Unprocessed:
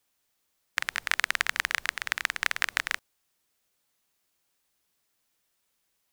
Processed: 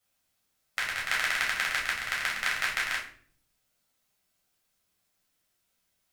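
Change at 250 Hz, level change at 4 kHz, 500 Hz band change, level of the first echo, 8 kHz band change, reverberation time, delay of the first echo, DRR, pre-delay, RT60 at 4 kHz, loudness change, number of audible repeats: +2.0 dB, 0.0 dB, +1.0 dB, no echo, -0.5 dB, 0.55 s, no echo, -4.5 dB, 8 ms, 0.40 s, 0.0 dB, no echo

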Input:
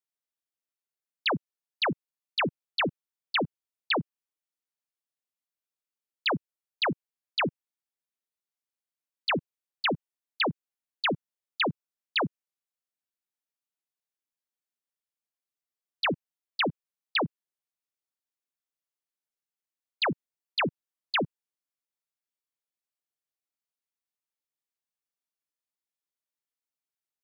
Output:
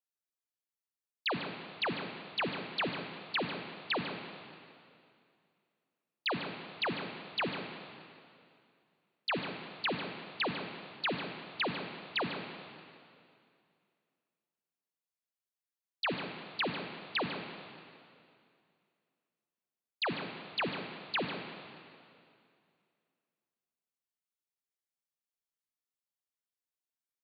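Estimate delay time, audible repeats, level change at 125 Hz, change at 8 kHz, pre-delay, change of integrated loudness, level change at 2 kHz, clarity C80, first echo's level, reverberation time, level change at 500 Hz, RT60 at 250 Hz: 147 ms, 1, -6.0 dB, no reading, 30 ms, -6.0 dB, -5.0 dB, 5.0 dB, -11.0 dB, 2.4 s, -5.0 dB, 2.4 s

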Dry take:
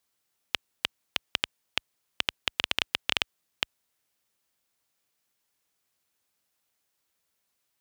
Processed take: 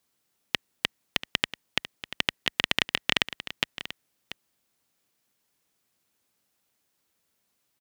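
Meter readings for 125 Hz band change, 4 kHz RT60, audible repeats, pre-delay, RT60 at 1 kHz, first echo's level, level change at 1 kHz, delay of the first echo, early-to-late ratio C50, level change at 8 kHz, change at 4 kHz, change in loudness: +6.5 dB, no reverb, 1, no reverb, no reverb, -13.5 dB, +2.5 dB, 687 ms, no reverb, +2.5 dB, +2.0 dB, +3.0 dB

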